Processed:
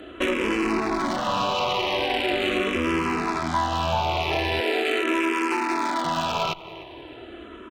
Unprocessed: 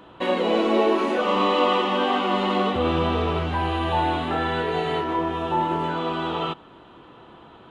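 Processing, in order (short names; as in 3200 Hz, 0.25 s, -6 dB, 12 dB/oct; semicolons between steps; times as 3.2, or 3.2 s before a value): rattling part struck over -34 dBFS, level -17 dBFS; feedback echo 0.303 s, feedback 45%, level -23 dB; compressor 5:1, threshold -28 dBFS, peak gain reduction 11.5 dB; comb 3 ms, depth 44%; added harmonics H 8 -19 dB, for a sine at -14.5 dBFS; 4.6–6.05 steep high-pass 220 Hz 48 dB/oct; one-sided clip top -21 dBFS; endless phaser -0.41 Hz; gain +8 dB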